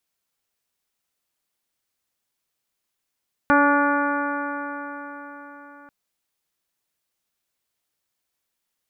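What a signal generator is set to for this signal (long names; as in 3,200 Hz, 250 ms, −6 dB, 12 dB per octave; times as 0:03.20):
stiff-string partials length 2.39 s, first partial 285 Hz, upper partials −3.5/−2/−2/0/−9.5/−19/−18.5 dB, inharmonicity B 0.0012, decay 4.52 s, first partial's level −18 dB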